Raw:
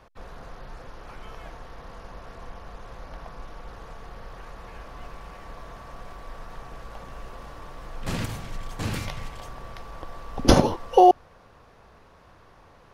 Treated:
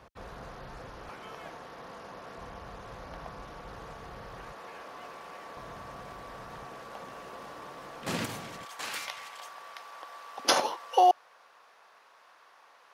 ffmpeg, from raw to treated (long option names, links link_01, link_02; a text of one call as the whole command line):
ffmpeg -i in.wav -af "asetnsamples=nb_out_samples=441:pad=0,asendcmd='1.09 highpass f 180;2.38 highpass f 71;4.53 highpass f 300;5.57 highpass f 94;6.65 highpass f 210;8.65 highpass f 880',highpass=57" out.wav